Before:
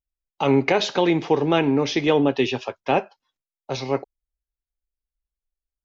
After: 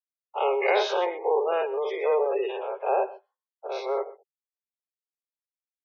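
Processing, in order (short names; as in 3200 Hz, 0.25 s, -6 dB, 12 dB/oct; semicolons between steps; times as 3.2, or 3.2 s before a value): spectral dilation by 0.12 s; 1.05–3.72 bell 5700 Hz -8.5 dB 2.8 oct; spectral gate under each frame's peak -25 dB strong; low-pass opened by the level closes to 700 Hz, open at -15 dBFS; steep high-pass 390 Hz 96 dB/oct; high shelf 2400 Hz -9.5 dB; echo 0.124 s -18.5 dB; gain -6 dB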